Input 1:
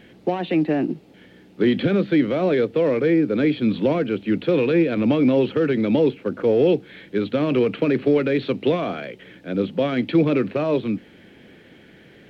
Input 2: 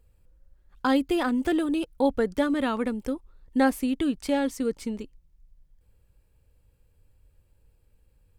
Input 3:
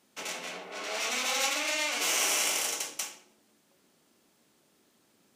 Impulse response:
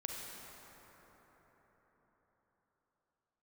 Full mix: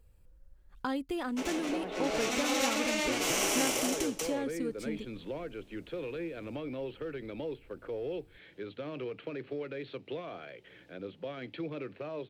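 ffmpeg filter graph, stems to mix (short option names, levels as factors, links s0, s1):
-filter_complex "[0:a]equalizer=f=220:t=o:w=0.77:g=-11,acompressor=threshold=0.00447:ratio=1.5,adelay=1450,volume=0.447[s0];[1:a]acompressor=threshold=0.0112:ratio=2,volume=0.944[s1];[2:a]equalizer=f=280:t=o:w=2.3:g=13,adelay=1200,volume=0.631[s2];[s0][s1][s2]amix=inputs=3:normalize=0"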